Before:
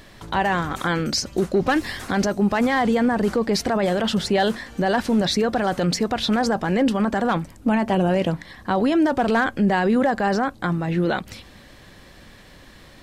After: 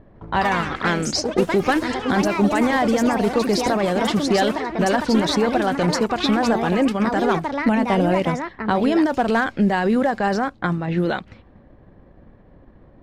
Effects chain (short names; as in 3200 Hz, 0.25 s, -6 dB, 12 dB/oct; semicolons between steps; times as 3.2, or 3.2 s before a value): transient shaper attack +3 dB, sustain -4 dB; echoes that change speed 0.157 s, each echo +4 st, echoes 3, each echo -6 dB; low-pass opened by the level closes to 640 Hz, open at -16 dBFS